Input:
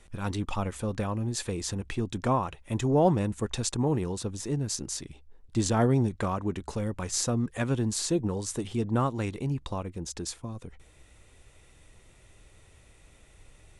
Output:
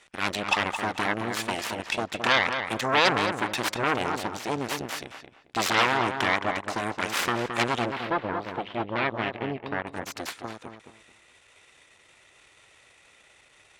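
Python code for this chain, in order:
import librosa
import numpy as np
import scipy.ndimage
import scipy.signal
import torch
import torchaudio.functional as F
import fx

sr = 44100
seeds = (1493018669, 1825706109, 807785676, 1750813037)

p1 = fx.tracing_dist(x, sr, depth_ms=0.32)
p2 = 10.0 ** (-20.0 / 20.0) * np.tanh(p1 / 10.0 ** (-20.0 / 20.0))
p3 = p1 + (p2 * 10.0 ** (-10.5 / 20.0))
p4 = fx.cheby_harmonics(p3, sr, harmonics=(5, 8), levels_db=(-28, -7), full_scale_db=-11.0)
p5 = fx.bandpass_q(p4, sr, hz=2400.0, q=0.53)
p6 = fx.air_absorb(p5, sr, metres=400.0, at=(7.89, 9.87))
p7 = p6 + fx.echo_filtered(p6, sr, ms=219, feedback_pct=25, hz=2500.0, wet_db=-6.5, dry=0)
y = p7 * 10.0 ** (3.0 / 20.0)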